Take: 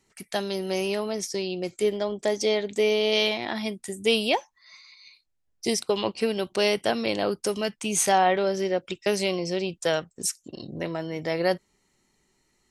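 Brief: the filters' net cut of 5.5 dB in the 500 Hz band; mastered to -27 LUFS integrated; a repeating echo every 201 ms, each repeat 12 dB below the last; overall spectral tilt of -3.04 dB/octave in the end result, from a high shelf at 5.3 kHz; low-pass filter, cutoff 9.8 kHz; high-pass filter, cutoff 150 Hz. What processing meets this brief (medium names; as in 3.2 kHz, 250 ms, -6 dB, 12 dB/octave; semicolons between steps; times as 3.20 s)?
high-pass 150 Hz; low-pass 9.8 kHz; peaking EQ 500 Hz -7 dB; treble shelf 5.3 kHz -4.5 dB; feedback delay 201 ms, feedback 25%, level -12 dB; trim +2.5 dB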